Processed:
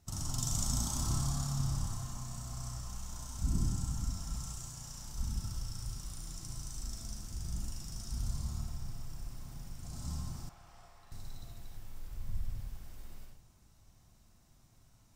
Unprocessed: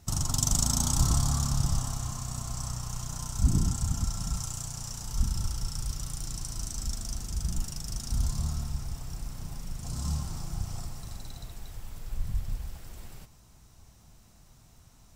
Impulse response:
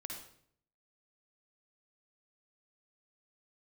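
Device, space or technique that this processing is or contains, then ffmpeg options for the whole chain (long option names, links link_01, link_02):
bathroom: -filter_complex "[1:a]atrim=start_sample=2205[link_01];[0:a][link_01]afir=irnorm=-1:irlink=0,asettb=1/sr,asplit=3[link_02][link_03][link_04];[link_02]atrim=end=10.494[link_05];[link_03]atrim=start=10.49:end=11.12,asetpts=PTS-STARTPTS,afade=type=in:duration=0.004:curve=qsin,afade=type=out:start_time=0.626:duration=0.004:curve=qsin,acrossover=split=510 3300:gain=0.141 1 0.2[link_06][link_07][link_08];[link_06][link_07][link_08]amix=inputs=3:normalize=0[link_09];[link_04]atrim=start=11.116[link_10];[link_05][link_09]acrossfade=duration=0.004:curve1=hsin:curve2=qsin[link_11];[link_11][link_10]acrossfade=duration=0.004:curve1=qsin:curve2=hsin,volume=-5.5dB"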